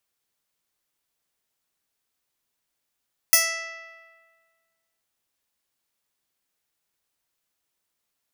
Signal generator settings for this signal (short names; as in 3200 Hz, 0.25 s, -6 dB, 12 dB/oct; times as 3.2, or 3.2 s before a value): plucked string E5, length 1.68 s, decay 1.69 s, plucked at 0.17, bright